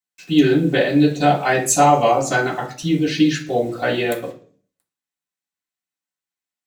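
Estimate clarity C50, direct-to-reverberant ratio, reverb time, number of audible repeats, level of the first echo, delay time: 11.0 dB, −7.5 dB, 0.45 s, no echo audible, no echo audible, no echo audible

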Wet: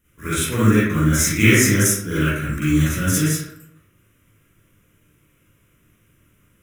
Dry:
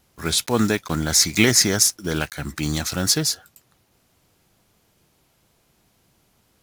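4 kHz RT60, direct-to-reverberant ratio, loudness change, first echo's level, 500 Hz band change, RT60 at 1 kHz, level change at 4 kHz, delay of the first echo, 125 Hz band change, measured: 0.45 s, −10.5 dB, +2.0 dB, no echo audible, +1.5 dB, 0.75 s, −7.0 dB, no echo audible, +8.5 dB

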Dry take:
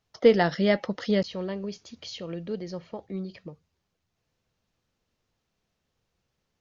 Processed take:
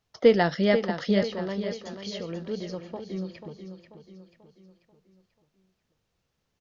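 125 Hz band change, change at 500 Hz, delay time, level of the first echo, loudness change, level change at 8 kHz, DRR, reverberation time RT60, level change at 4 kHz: +0.5 dB, +0.5 dB, 488 ms, −9.5 dB, 0.0 dB, can't be measured, no reverb audible, no reverb audible, +0.5 dB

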